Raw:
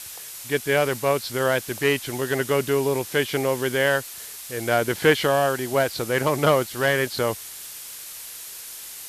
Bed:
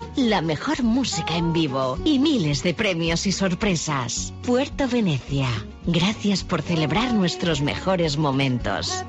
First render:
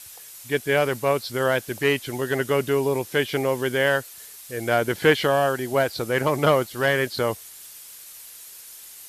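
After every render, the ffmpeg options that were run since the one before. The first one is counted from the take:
ffmpeg -i in.wav -af "afftdn=noise_reduction=7:noise_floor=-38" out.wav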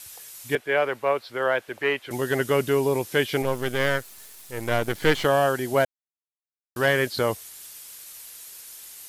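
ffmpeg -i in.wav -filter_complex "[0:a]asettb=1/sr,asplit=3[link_01][link_02][link_03];[link_01]atrim=end=0.554[link_04];[link_02]atrim=start=0.55:end=2.11,asetpts=PTS-STARTPTS,afade=type=in:duration=0.004:curve=qsin,afade=type=out:start_time=1.556:duration=0.004:curve=qsin,acrossover=split=380 3100:gain=0.2 1 0.141[link_05][link_06][link_07];[link_05][link_06][link_07]amix=inputs=3:normalize=0[link_08];[link_03]atrim=start=2.106[link_09];[link_04][link_08]acrossfade=duration=0.004:curve1=hsin:curve2=qsin[link_10];[link_10][link_09]acrossfade=duration=0.004:curve1=qsin:curve2=hsin,asettb=1/sr,asplit=3[link_11][link_12][link_13];[link_11]atrim=end=3.424[link_14];[link_12]atrim=start=3.42:end=5.25,asetpts=PTS-STARTPTS,afade=type=in:duration=0.004:curve=qsin,afade=type=out:start_time=1.826:duration=0.004:curve=qsin,aeval=exprs='if(lt(val(0),0),0.251*val(0),val(0))':channel_layout=same[link_15];[link_13]atrim=start=5.246[link_16];[link_14][link_15]acrossfade=duration=0.004:curve1=hsin:curve2=qsin[link_17];[link_17][link_16]acrossfade=duration=0.004:curve1=qsin:curve2=hsin,asplit=3[link_18][link_19][link_20];[link_18]atrim=end=5.85,asetpts=PTS-STARTPTS,afade=type=out:start_time=5.846:duration=0.004:curve=hsin[link_21];[link_19]atrim=start=5.85:end=6.76,asetpts=PTS-STARTPTS,volume=0[link_22];[link_20]atrim=start=6.76,asetpts=PTS-STARTPTS,afade=type=in:duration=0.004:curve=hsin[link_23];[link_21][link_22][link_23]concat=n=3:v=0:a=1" out.wav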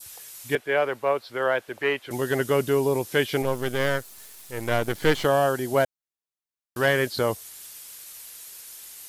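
ffmpeg -i in.wav -af "adynamicequalizer=threshold=0.0112:dfrequency=2200:dqfactor=1.1:tfrequency=2200:tqfactor=1.1:attack=5:release=100:ratio=0.375:range=2.5:mode=cutabove:tftype=bell" out.wav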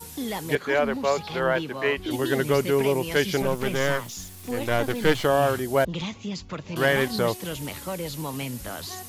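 ffmpeg -i in.wav -i bed.wav -filter_complex "[1:a]volume=-11dB[link_01];[0:a][link_01]amix=inputs=2:normalize=0" out.wav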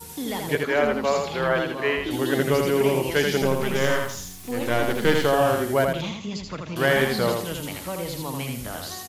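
ffmpeg -i in.wav -af "aecho=1:1:82|164|246|328:0.631|0.202|0.0646|0.0207" out.wav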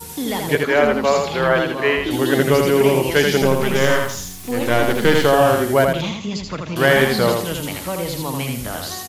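ffmpeg -i in.wav -af "volume=6dB,alimiter=limit=-2dB:level=0:latency=1" out.wav

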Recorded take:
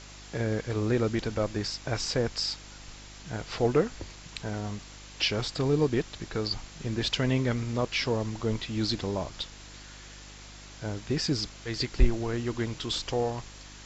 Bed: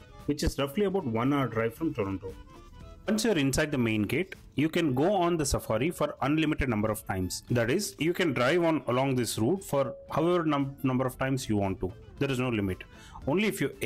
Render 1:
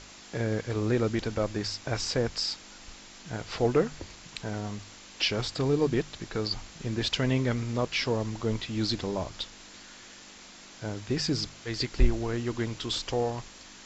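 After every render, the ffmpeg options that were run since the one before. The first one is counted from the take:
ffmpeg -i in.wav -af "bandreject=frequency=50:width_type=h:width=4,bandreject=frequency=100:width_type=h:width=4,bandreject=frequency=150:width_type=h:width=4" out.wav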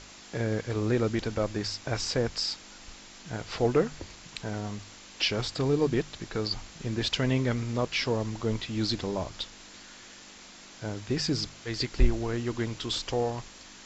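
ffmpeg -i in.wav -af anull out.wav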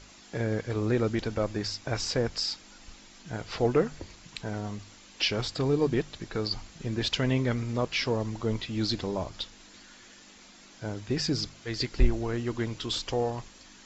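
ffmpeg -i in.wav -af "afftdn=noise_reduction=6:noise_floor=-49" out.wav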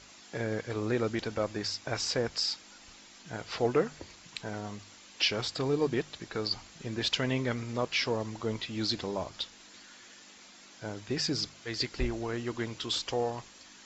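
ffmpeg -i in.wav -af "highpass=frequency=76:poles=1,lowshelf=frequency=380:gain=-5.5" out.wav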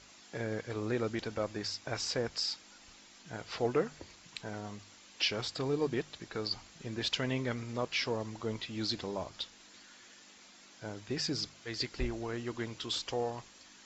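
ffmpeg -i in.wav -af "volume=-3.5dB" out.wav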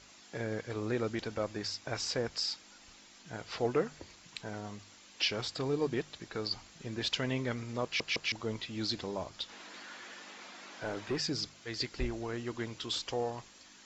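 ffmpeg -i in.wav -filter_complex "[0:a]asplit=3[link_01][link_02][link_03];[link_01]afade=type=out:start_time=9.48:duration=0.02[link_04];[link_02]asplit=2[link_05][link_06];[link_06]highpass=frequency=720:poles=1,volume=22dB,asoftclip=type=tanh:threshold=-24.5dB[link_07];[link_05][link_07]amix=inputs=2:normalize=0,lowpass=frequency=1200:poles=1,volume=-6dB,afade=type=in:start_time=9.48:duration=0.02,afade=type=out:start_time=11.16:duration=0.02[link_08];[link_03]afade=type=in:start_time=11.16:duration=0.02[link_09];[link_04][link_08][link_09]amix=inputs=3:normalize=0,asplit=4[link_10][link_11][link_12][link_13];[link_10]atrim=end=8.002[link_14];[link_11]atrim=start=7.838:end=8.002[link_15];[link_12]atrim=start=7.838:end=8.002[link_16];[link_13]atrim=start=8.318[link_17];[link_14][link_15]acrossfade=duration=0.004:curve1=hsin:curve2=hsin[link_18];[link_18][link_16]acrossfade=duration=0.004:curve1=hsin:curve2=hsin[link_19];[link_19][link_17]acrossfade=duration=0.004:curve1=hsin:curve2=hsin" out.wav

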